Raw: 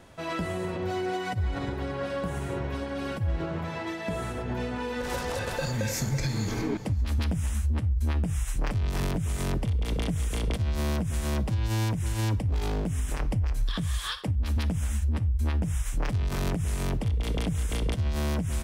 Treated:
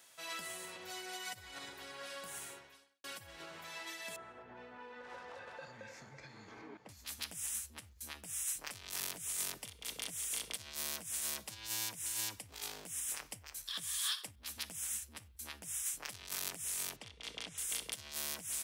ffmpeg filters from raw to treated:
-filter_complex "[0:a]asettb=1/sr,asplit=3[s0][s1][s2];[s0]atrim=end=4.164[s3];[s1]atrim=start=4.16:end=6.89,asetpts=PTS-STARTPTS,afade=t=in:d=0.004:c=qsin,afade=t=out:st=2.726:d=0.004:c=qsin,lowpass=1300[s4];[s2]atrim=start=6.886[s5];[s3][s4]acrossfade=d=0.004:c1=hsin:c2=qsin[s6];[s6][s5]acrossfade=d=0.004:c1=qsin:c2=hsin,asettb=1/sr,asplit=3[s7][s8][s9];[s7]atrim=end=16.964[s10];[s8]atrim=start=16.96:end=17.58,asetpts=PTS-STARTPTS,afade=t=in:d=0.004:c=qsin,afade=t=out:st=0.616:d=0.004:c=qsin,lowpass=4900[s11];[s9]atrim=start=17.576[s12];[s10][s11]acrossfade=d=0.004:c1=hsin:c2=qsin[s13];[s13][s12]acrossfade=d=0.004:c1=qsin:c2=hsin,asplit=2[s14][s15];[s14]atrim=end=3.04,asetpts=PTS-STARTPTS,afade=t=out:st=2.43:d=0.61:c=qua[s16];[s15]atrim=start=3.04,asetpts=PTS-STARTPTS,afade=t=in:d=0.004:c=hsin[s17];[s16][s17]concat=n=2:v=0:a=1,aderivative,volume=1.5"

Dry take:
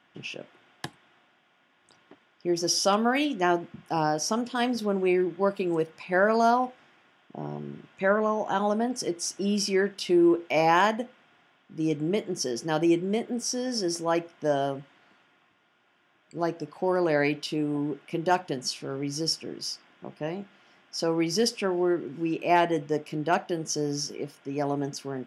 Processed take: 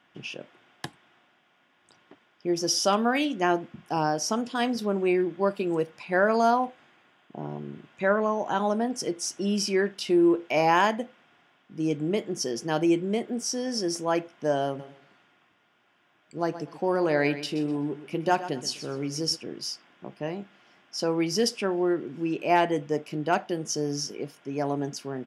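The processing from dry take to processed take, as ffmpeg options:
-filter_complex "[0:a]asettb=1/sr,asplit=3[s0][s1][s2];[s0]atrim=end=6.244[s3];[s1]atrim=start=6.24:end=7.9,asetpts=PTS-STARTPTS,afade=t=in:d=0.004:c=qsin,afade=t=out:st=1.656:d=0.004:c=qsin,bandreject=f=5500:w=9.3[s4];[s2]atrim=start=7.896[s5];[s3][s4]acrossfade=d=0.004:c1=hsin:c2=qsin[s6];[s6][s5]acrossfade=d=0.004:c1=qsin:c2=hsin,asplit=3[s7][s8][s9];[s7]afade=t=out:st=14.78:d=0.02[s10];[s8]aecho=1:1:125|250|375:0.224|0.056|0.014,afade=t=in:st=14.78:d=0.02,afade=t=out:st=19.35:d=0.02[s11];[s9]afade=t=in:st=19.35:d=0.02[s12];[s10][s11][s12]amix=inputs=3:normalize=0"

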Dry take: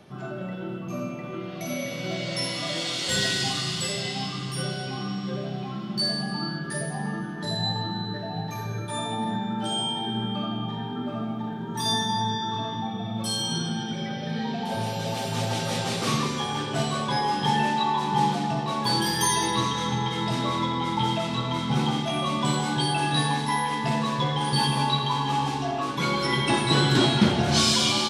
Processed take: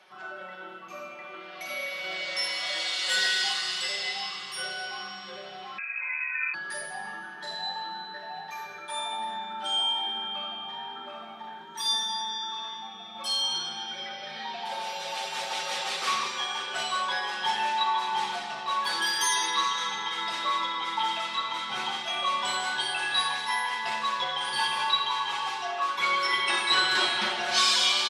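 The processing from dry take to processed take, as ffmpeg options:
-filter_complex "[0:a]asettb=1/sr,asplit=3[s0][s1][s2];[s0]atrim=end=5.784[s3];[s1]atrim=start=5.78:end=6.54,asetpts=PTS-STARTPTS,afade=t=in:d=0.004:c=qsin,afade=t=out:st=0.756:d=0.004:c=qsin,lowpass=f=2300:t=q:w=0.5098,lowpass=f=2300:t=q:w=0.6013,lowpass=f=2300:t=q:w=0.9,lowpass=f=2300:t=q:w=2.563,afreqshift=-2700[s4];[s2]atrim=start=6.536[s5];[s3][s4]acrossfade=d=0.004:c1=hsin:c2=qsin[s6];[s6][s5]acrossfade=d=0.004:c1=qsin:c2=hsin,asettb=1/sr,asplit=3[s7][s8][s9];[s7]atrim=end=11.634[s10];[s8]atrim=start=11.63:end=13.15,asetpts=PTS-STARTPTS,afade=t=in:d=0.004:c=qsin,afade=t=out:st=1.516:d=0.004:c=qsin,equalizer=f=850:w=0.94:g=-6.5[s11];[s9]atrim=start=13.146[s12];[s10][s11]acrossfade=d=0.004:c1=hsin:c2=qsin[s13];[s13][s12]acrossfade=d=0.004:c1=qsin:c2=hsin,highpass=1100,highshelf=f=4700:g=-10.5,aecho=1:1:5.4:0.67,volume=1.33"

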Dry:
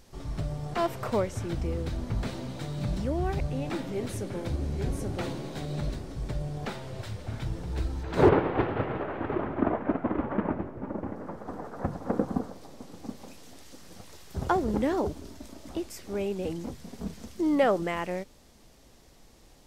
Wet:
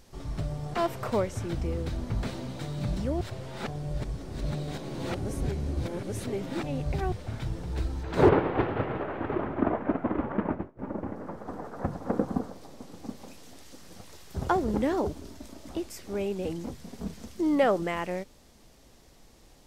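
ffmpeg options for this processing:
-filter_complex "[0:a]asettb=1/sr,asplit=3[s0][s1][s2];[s0]atrim=end=10.324[s3];[s1]atrim=start=10.32:end=10.79,asetpts=PTS-STARTPTS,afade=t=in:d=0.004:c=qsin,afade=t=out:st=0.466:d=0.004:c=qsin,agate=range=0.0224:threshold=0.0282:ratio=3:release=100:detection=peak[s4];[s2]atrim=start=10.786[s5];[s3][s4]acrossfade=d=0.004:c1=hsin:c2=qsin[s6];[s6][s5]acrossfade=d=0.004:c1=qsin:c2=hsin,asplit=3[s7][s8][s9];[s7]atrim=end=3.212[s10];[s8]atrim=start=3.208:end=7.122,asetpts=PTS-STARTPTS,areverse[s11];[s9]atrim=start=7.118[s12];[s10][s11]acrossfade=d=0.004:c1=hsin:c2=hsin[s13];[s13][s12]acrossfade=d=0.004:c1=hsin:c2=hsin"

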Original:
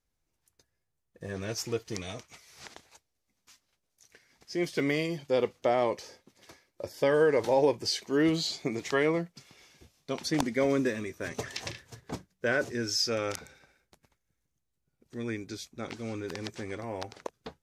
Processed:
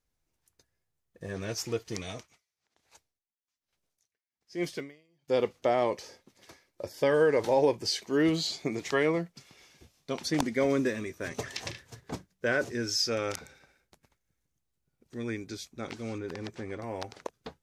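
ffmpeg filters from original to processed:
-filter_complex "[0:a]asettb=1/sr,asplit=3[s0][s1][s2];[s0]atrim=end=2.174[s3];[s1]atrim=start=2.17:end=5.28,asetpts=PTS-STARTPTS,afade=t=in:d=0.004:c=qsin,afade=t=out:st=3.106:d=0.004:c=qsin,aeval=exprs='val(0)*pow(10,-37*(0.5-0.5*cos(2*PI*1.2*n/s))/20)':c=same[s4];[s2]atrim=start=5.276[s5];[s3][s4]acrossfade=d=0.004:c1=hsin:c2=qsin[s6];[s6][s5]acrossfade=d=0.004:c1=qsin:c2=hsin,asettb=1/sr,asplit=3[s7][s8][s9];[s7]atrim=end=16.184[s10];[s8]atrim=start=16.18:end=16.82,asetpts=PTS-STARTPTS,afade=t=in:d=0.004:c=qsin,afade=t=out:st=0.636:d=0.004:c=qsin,highshelf=f=3100:g=-9.5[s11];[s9]atrim=start=16.816[s12];[s10][s11]acrossfade=d=0.004:c1=hsin:c2=qsin[s13];[s13][s12]acrossfade=d=0.004:c1=qsin:c2=hsin"

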